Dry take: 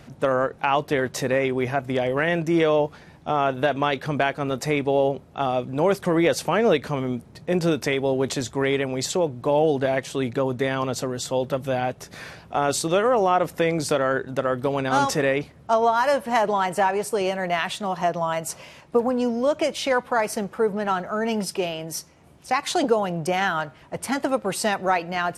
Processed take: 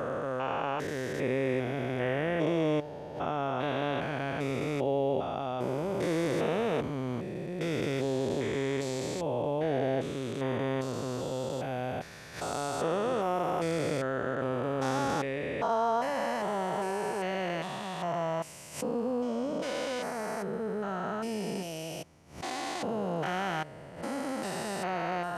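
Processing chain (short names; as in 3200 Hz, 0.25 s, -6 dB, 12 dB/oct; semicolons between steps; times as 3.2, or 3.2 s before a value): stepped spectrum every 0.4 s; backwards sustainer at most 130 dB/s; gain -4.5 dB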